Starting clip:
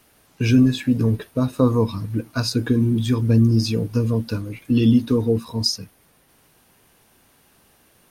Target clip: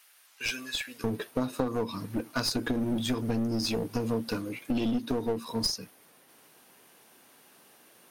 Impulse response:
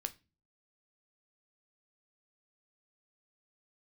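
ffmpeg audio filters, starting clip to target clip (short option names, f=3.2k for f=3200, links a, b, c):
-af "asetnsamples=n=441:p=0,asendcmd='1.04 highpass f 240',highpass=1.4k,acompressor=threshold=-23dB:ratio=12,aeval=exprs='clip(val(0),-1,0.0376)':c=same"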